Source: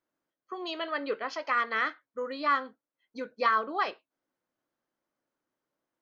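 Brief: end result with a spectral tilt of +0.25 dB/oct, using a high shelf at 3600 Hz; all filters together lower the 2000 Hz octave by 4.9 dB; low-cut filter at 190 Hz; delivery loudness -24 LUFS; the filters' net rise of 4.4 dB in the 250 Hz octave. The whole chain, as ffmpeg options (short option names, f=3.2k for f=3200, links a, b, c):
-af "highpass=190,equalizer=f=250:t=o:g=6.5,equalizer=f=2k:t=o:g=-8,highshelf=f=3.6k:g=7,volume=8dB"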